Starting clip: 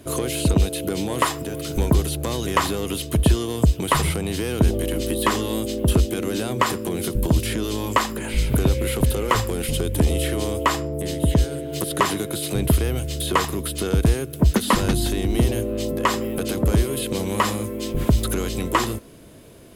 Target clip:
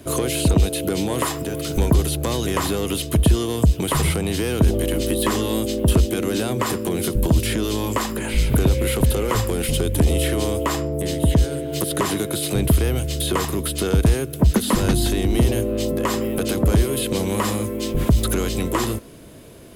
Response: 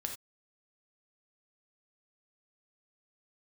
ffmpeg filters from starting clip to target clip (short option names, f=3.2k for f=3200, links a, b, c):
-filter_complex "[0:a]acrossover=split=560|7200[a][b][c];[b]alimiter=limit=-17.5dB:level=0:latency=1:release=135[d];[a][d][c]amix=inputs=3:normalize=0,acontrast=78,volume=-4dB"